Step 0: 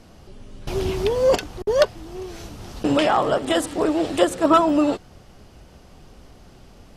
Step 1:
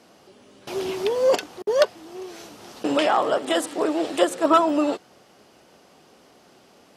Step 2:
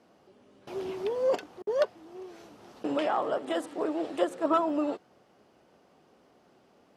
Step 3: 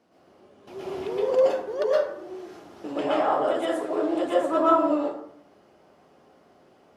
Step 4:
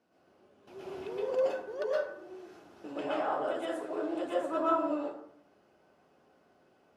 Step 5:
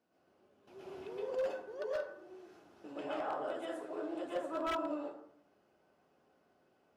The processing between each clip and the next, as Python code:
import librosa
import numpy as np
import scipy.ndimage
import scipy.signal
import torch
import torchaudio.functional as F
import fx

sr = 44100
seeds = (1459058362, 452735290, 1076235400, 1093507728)

y1 = scipy.signal.sosfilt(scipy.signal.butter(2, 290.0, 'highpass', fs=sr, output='sos'), x)
y1 = y1 * 10.0 ** (-1.0 / 20.0)
y2 = fx.high_shelf(y1, sr, hz=2600.0, db=-11.0)
y2 = y2 * 10.0 ** (-7.0 / 20.0)
y3 = fx.rev_plate(y2, sr, seeds[0], rt60_s=0.69, hf_ratio=0.5, predelay_ms=105, drr_db=-7.5)
y3 = y3 * 10.0 ** (-3.5 / 20.0)
y4 = fx.small_body(y3, sr, hz=(1500.0, 2600.0), ring_ms=45, db=9)
y4 = y4 * 10.0 ** (-9.0 / 20.0)
y5 = 10.0 ** (-23.0 / 20.0) * (np.abs((y4 / 10.0 ** (-23.0 / 20.0) + 3.0) % 4.0 - 2.0) - 1.0)
y5 = y5 * 10.0 ** (-6.0 / 20.0)